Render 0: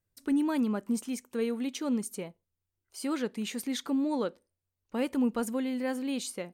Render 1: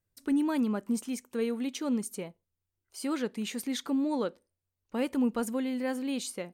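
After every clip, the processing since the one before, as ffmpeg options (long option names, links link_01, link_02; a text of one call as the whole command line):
ffmpeg -i in.wav -af anull out.wav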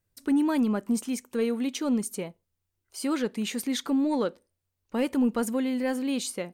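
ffmpeg -i in.wav -af "asoftclip=type=tanh:threshold=-19dB,volume=4.5dB" out.wav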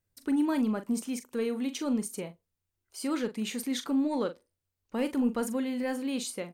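ffmpeg -i in.wav -filter_complex "[0:a]asplit=2[link_01][link_02];[link_02]adelay=41,volume=-10.5dB[link_03];[link_01][link_03]amix=inputs=2:normalize=0,volume=-3.5dB" out.wav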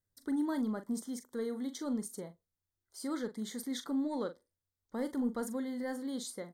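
ffmpeg -i in.wav -af "asuperstop=centerf=2600:order=8:qfactor=2.4,volume=-6dB" out.wav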